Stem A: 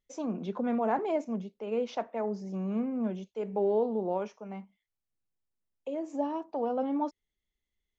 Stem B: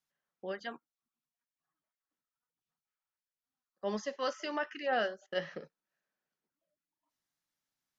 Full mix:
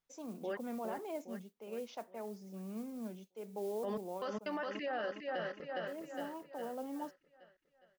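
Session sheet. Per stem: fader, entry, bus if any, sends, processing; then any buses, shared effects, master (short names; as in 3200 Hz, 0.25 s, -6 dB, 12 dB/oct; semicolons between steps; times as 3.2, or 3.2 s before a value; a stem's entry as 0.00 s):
-12.0 dB, 0.00 s, no send, no echo send, modulation noise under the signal 27 dB; high shelf 3800 Hz +8 dB
+2.0 dB, 0.00 s, no send, echo send -6.5 dB, LPF 2300 Hz 6 dB/oct; step gate "xxxxxxx...xx.x" 185 bpm -60 dB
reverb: off
echo: feedback echo 0.41 s, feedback 50%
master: limiter -30.5 dBFS, peak gain reduction 12 dB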